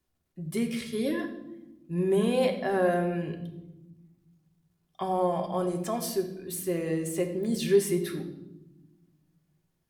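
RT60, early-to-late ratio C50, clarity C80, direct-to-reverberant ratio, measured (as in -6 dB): 0.95 s, 9.0 dB, 11.5 dB, 3.5 dB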